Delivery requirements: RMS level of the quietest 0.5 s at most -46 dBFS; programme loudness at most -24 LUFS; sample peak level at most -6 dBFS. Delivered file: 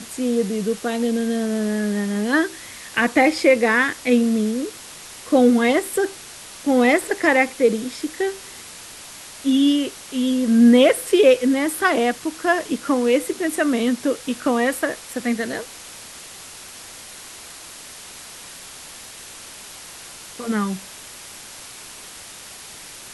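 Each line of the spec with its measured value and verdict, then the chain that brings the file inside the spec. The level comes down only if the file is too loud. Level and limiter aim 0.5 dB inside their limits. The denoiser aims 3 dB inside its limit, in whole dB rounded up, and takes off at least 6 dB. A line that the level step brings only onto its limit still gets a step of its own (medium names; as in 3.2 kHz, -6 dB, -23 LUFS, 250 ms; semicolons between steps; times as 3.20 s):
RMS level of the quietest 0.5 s -39 dBFS: fail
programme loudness -19.5 LUFS: fail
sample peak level -4.0 dBFS: fail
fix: noise reduction 6 dB, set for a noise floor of -39 dBFS; trim -5 dB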